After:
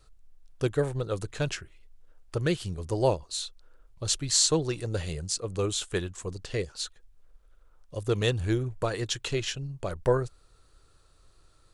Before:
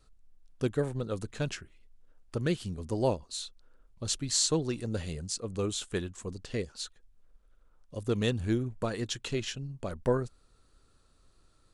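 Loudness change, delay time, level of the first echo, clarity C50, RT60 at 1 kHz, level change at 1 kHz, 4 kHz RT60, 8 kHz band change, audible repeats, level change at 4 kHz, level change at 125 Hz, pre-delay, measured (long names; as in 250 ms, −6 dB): +3.5 dB, no echo audible, no echo audible, no reverb audible, no reverb audible, +4.5 dB, no reverb audible, +4.5 dB, no echo audible, +4.5 dB, +3.5 dB, no reverb audible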